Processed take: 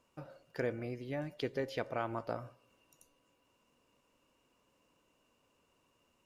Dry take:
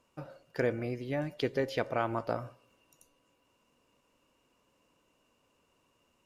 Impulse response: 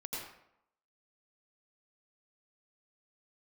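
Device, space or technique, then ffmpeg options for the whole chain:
parallel compression: -filter_complex "[0:a]asplit=2[a][b];[b]acompressor=threshold=-49dB:ratio=6,volume=-4.5dB[c];[a][c]amix=inputs=2:normalize=0,volume=-6dB"

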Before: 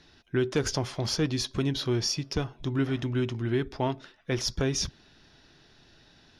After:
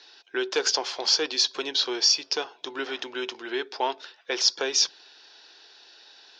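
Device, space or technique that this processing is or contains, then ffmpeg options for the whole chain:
phone speaker on a table: -af "lowpass=f=6.7k:w=0.5412,lowpass=f=6.7k:w=1.3066,highpass=f=490:w=0.5412,highpass=f=490:w=1.3066,equalizer=f=620:t=q:w=4:g=-9,equalizer=f=1.2k:t=q:w=4:g=-6,equalizer=f=2k:t=q:w=4:g=-6,equalizer=f=4.5k:t=q:w=4:g=4,lowpass=f=8.2k:w=0.5412,lowpass=f=8.2k:w=1.3066,volume=8.5dB"

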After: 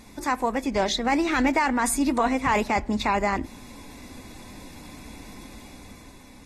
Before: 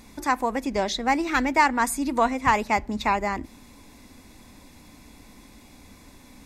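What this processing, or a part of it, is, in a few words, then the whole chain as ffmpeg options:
low-bitrate web radio: -af "dynaudnorm=f=200:g=9:m=5.5dB,alimiter=limit=-12.5dB:level=0:latency=1:release=11" -ar 44100 -c:a aac -b:a 32k

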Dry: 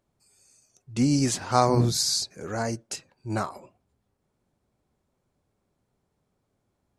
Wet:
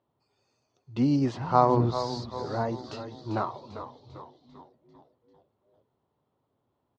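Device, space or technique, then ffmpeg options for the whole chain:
frequency-shifting delay pedal into a guitar cabinet: -filter_complex "[0:a]asplit=7[a][b][c][d][e][f][g];[b]adelay=395,afreqshift=-120,volume=-10dB[h];[c]adelay=790,afreqshift=-240,volume=-15.8dB[i];[d]adelay=1185,afreqshift=-360,volume=-21.7dB[j];[e]adelay=1580,afreqshift=-480,volume=-27.5dB[k];[f]adelay=1975,afreqshift=-600,volume=-33.4dB[l];[g]adelay=2370,afreqshift=-720,volume=-39.2dB[m];[a][h][i][j][k][l][m]amix=inputs=7:normalize=0,highpass=110,equalizer=f=190:t=q:w=4:g=-8,equalizer=f=970:t=q:w=4:g=5,equalizer=f=1.6k:t=q:w=4:g=-6,equalizer=f=2.3k:t=q:w=4:g=-9,lowpass=f=3.6k:w=0.5412,lowpass=f=3.6k:w=1.3066,asettb=1/sr,asplit=3[n][o][p];[n]atrim=end=1.164[q];[o]atrim=start=1.16:end=2.84,asetpts=PTS-STARTPTS,afade=t=in:d=0.004:c=qsin,afade=t=out:st=1.676:d=0.004:c=qsin,equalizer=f=3.7k:t=o:w=1.4:g=-5.5[r];[p]atrim=start=2.836[s];[q][r]acrossfade=d=0.004:c1=hsin:c2=qsin[t];[t][s]acrossfade=d=0.004:c1=qsin:c2=hsin"

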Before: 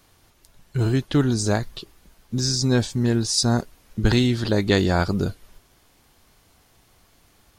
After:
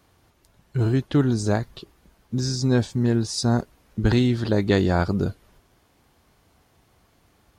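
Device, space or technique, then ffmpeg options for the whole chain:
behind a face mask: -af "highpass=42,highshelf=f=2.3k:g=-8"

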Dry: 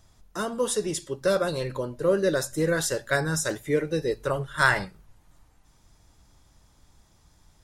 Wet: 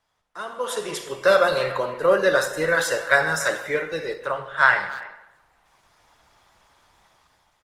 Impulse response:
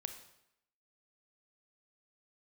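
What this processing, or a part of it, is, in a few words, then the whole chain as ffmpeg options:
speakerphone in a meeting room: -filter_complex "[0:a]acrossover=split=580 3500:gain=0.0708 1 0.251[a][b][c];[a][b][c]amix=inputs=3:normalize=0,asplit=3[d][e][f];[d]afade=t=out:st=4.31:d=0.02[g];[e]lowpass=6.5k,afade=t=in:st=4.31:d=0.02,afade=t=out:st=4.78:d=0.02[h];[f]afade=t=in:st=4.78:d=0.02[i];[g][h][i]amix=inputs=3:normalize=0,equalizer=f=150:w=1.1:g=5.5[j];[1:a]atrim=start_sample=2205[k];[j][k]afir=irnorm=-1:irlink=0,asplit=2[l][m];[m]adelay=290,highpass=300,lowpass=3.4k,asoftclip=type=hard:threshold=-18.5dB,volume=-15dB[n];[l][n]amix=inputs=2:normalize=0,dynaudnorm=f=160:g=9:m=14.5dB" -ar 48000 -c:a libopus -b:a 20k

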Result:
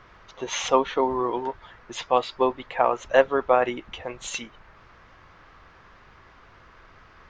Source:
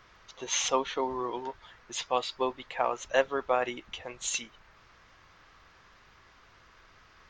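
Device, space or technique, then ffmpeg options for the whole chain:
through cloth: -af "highshelf=f=3.3k:g=-14.5,volume=8.5dB"

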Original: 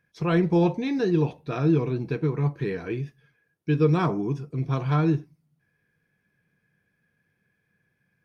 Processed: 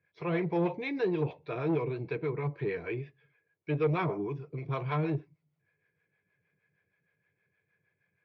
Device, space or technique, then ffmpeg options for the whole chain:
guitar amplifier with harmonic tremolo: -filter_complex "[0:a]acrossover=split=470[a][b];[a]aeval=exprs='val(0)*(1-0.7/2+0.7/2*cos(2*PI*6.4*n/s))':c=same[c];[b]aeval=exprs='val(0)*(1-0.7/2-0.7/2*cos(2*PI*6.4*n/s))':c=same[d];[c][d]amix=inputs=2:normalize=0,asoftclip=type=tanh:threshold=-19.5dB,highpass=91,equalizer=f=94:t=q:w=4:g=5,equalizer=f=230:t=q:w=4:g=-10,equalizer=f=420:t=q:w=4:g=6,equalizer=f=600:t=q:w=4:g=5,equalizer=f=1k:t=q:w=4:g=4,equalizer=f=2.2k:t=q:w=4:g=9,lowpass=f=4.2k:w=0.5412,lowpass=f=4.2k:w=1.3066,asettb=1/sr,asplit=3[e][f][g];[e]atrim=end=2.994[h];[f]atrim=start=2.99:end=3.87,asetpts=PTS-STARTPTS,afade=t=in:d=0.004:c=qsin,afade=t=out:st=0.876:d=0.004:c=qsin,lowpass=5.1k[i];[g]atrim=start=3.866[j];[h][i]acrossfade=d=0.004:c1=hsin:c2=qsin[k];[k][j]acrossfade=d=0.004:c1=qsin:c2=hsin,volume=-3.5dB"

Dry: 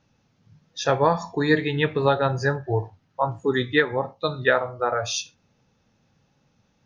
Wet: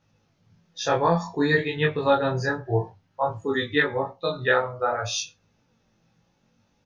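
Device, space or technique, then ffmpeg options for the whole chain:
double-tracked vocal: -filter_complex "[0:a]asplit=2[a][b];[b]adelay=18,volume=-2dB[c];[a][c]amix=inputs=2:normalize=0,flanger=delay=19.5:depth=4.7:speed=0.57"

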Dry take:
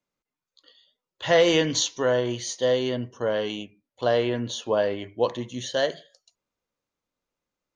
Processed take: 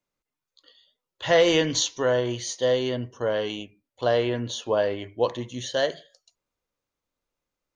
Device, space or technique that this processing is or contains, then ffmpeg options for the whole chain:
low shelf boost with a cut just above: -af "lowshelf=f=66:g=6.5,equalizer=f=200:t=o:w=0.65:g=-3.5"

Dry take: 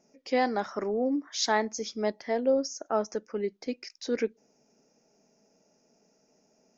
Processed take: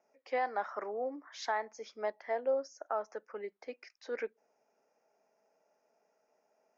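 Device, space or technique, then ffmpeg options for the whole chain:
DJ mixer with the lows and highs turned down: -filter_complex "[0:a]acrossover=split=540 2200:gain=0.0708 1 0.126[a][b][c];[a][b][c]amix=inputs=3:normalize=0,alimiter=limit=-23dB:level=0:latency=1:release=275"

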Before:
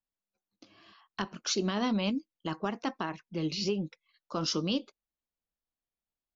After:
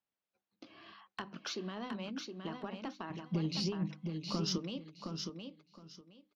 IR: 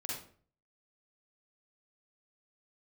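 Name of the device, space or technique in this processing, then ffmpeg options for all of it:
AM radio: -filter_complex "[0:a]highpass=100,lowpass=3.7k,acompressor=threshold=-42dB:ratio=6,asoftclip=type=tanh:threshold=-30.5dB,bandreject=f=50:t=h:w=6,bandreject=f=100:t=h:w=6,bandreject=f=150:t=h:w=6,bandreject=f=200:t=h:w=6,bandreject=f=250:t=h:w=6,bandreject=f=300:t=h:w=6,asettb=1/sr,asplit=3[a][b][c];[a]atrim=end=3.104[d];[b]atrim=start=3.1:end=4.58,asetpts=PTS-STARTPTS,afade=t=in:d=0.004:c=qsin,afade=t=out:st=1.476:d=0.004:c=qsin,bass=f=250:g=13,treble=f=4k:g=13[e];[c]atrim=start=4.576[f];[d][e]acrossfade=d=0.004:c1=hsin:c2=qsin[g];[g][f]acrossfade=d=0.004:c1=qsin:c2=hsin,aecho=1:1:716|1432|2148:0.531|0.111|0.0234,volume=3.5dB"

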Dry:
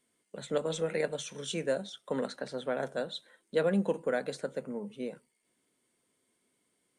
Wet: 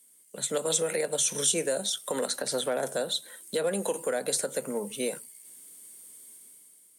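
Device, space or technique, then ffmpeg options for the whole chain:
FM broadcast chain: -filter_complex "[0:a]highpass=60,dynaudnorm=f=150:g=9:m=10dB,acrossover=split=350|890[a][b][c];[a]acompressor=threshold=-40dB:ratio=4[d];[b]acompressor=threshold=-22dB:ratio=4[e];[c]acompressor=threshold=-36dB:ratio=4[f];[d][e][f]amix=inputs=3:normalize=0,aemphasis=mode=production:type=50fm,alimiter=limit=-19.5dB:level=0:latency=1:release=104,asoftclip=type=hard:threshold=-20.5dB,lowpass=f=15k:w=0.5412,lowpass=f=15k:w=1.3066,aemphasis=mode=production:type=50fm"

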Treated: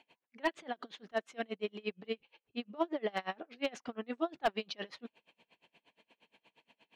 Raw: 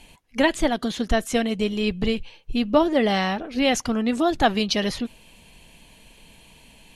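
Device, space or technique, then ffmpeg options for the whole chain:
helicopter radio: -af "highpass=340,lowpass=2.8k,aeval=exprs='val(0)*pow(10,-30*(0.5-0.5*cos(2*PI*8.5*n/s))/20)':c=same,asoftclip=type=hard:threshold=-15.5dB,volume=-6.5dB"

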